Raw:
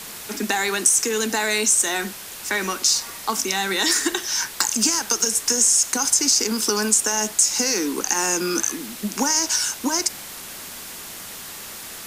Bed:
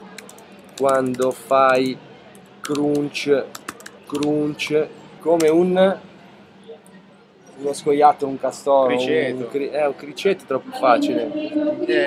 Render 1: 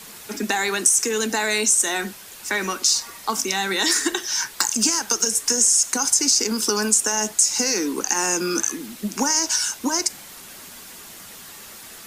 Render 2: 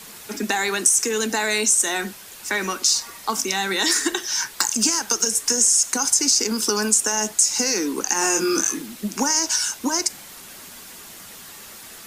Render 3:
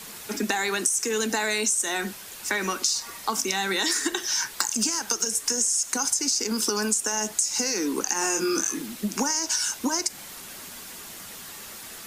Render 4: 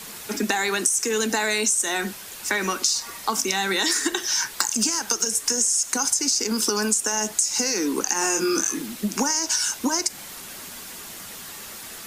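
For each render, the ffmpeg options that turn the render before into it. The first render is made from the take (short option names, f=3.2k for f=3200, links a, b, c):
-af "afftdn=nr=6:nf=-37"
-filter_complex "[0:a]asettb=1/sr,asplit=3[a][b][c];[a]atrim=end=8.194[d];[b]atrim=start=8.19:end=8.82,asetpts=PTS-STARTPTS,afade=t=in:d=0.004:c=qsin,afade=t=out:st=0.626:d=0.004:c=qsin,asplit=2[e][f];[f]adelay=25,volume=-3dB[g];[e][g]amix=inputs=2:normalize=0,atrim=end_sample=27783[h];[c]atrim=start=8.816[i];[d][h]acrossfade=d=0.004:c1=hsin:c2=qsin[j];[j][i]acrossfade=d=0.004:c1=qsin:c2=hsin"
-af "acompressor=threshold=-22dB:ratio=4"
-af "volume=2.5dB"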